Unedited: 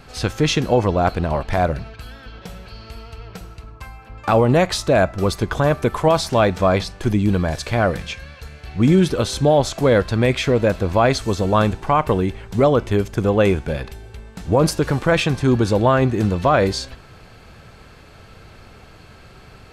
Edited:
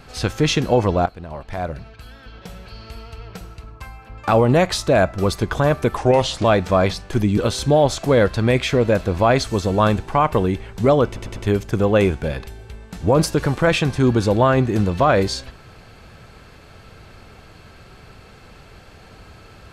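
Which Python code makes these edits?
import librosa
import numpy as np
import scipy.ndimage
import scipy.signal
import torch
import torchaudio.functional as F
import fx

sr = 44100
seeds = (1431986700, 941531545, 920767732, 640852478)

y = fx.edit(x, sr, fx.fade_in_from(start_s=1.06, length_s=1.75, floor_db=-17.0),
    fx.speed_span(start_s=5.97, length_s=0.38, speed=0.8),
    fx.cut(start_s=7.28, length_s=1.84),
    fx.stutter(start_s=12.81, slice_s=0.1, count=4), tone=tone)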